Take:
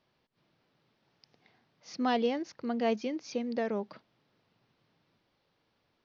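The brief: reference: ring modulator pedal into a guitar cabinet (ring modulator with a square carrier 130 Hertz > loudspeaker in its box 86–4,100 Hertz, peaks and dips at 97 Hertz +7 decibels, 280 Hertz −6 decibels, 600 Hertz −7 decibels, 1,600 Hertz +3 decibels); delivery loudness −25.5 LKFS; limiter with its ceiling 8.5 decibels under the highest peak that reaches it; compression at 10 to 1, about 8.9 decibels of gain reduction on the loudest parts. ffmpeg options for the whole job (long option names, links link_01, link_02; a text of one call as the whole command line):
ffmpeg -i in.wav -af "acompressor=threshold=-33dB:ratio=10,alimiter=level_in=9.5dB:limit=-24dB:level=0:latency=1,volume=-9.5dB,aeval=exprs='val(0)*sgn(sin(2*PI*130*n/s))':channel_layout=same,highpass=86,equalizer=frequency=97:width_type=q:width=4:gain=7,equalizer=frequency=280:width_type=q:width=4:gain=-6,equalizer=frequency=600:width_type=q:width=4:gain=-7,equalizer=frequency=1600:width_type=q:width=4:gain=3,lowpass=frequency=4100:width=0.5412,lowpass=frequency=4100:width=1.3066,volume=17.5dB" out.wav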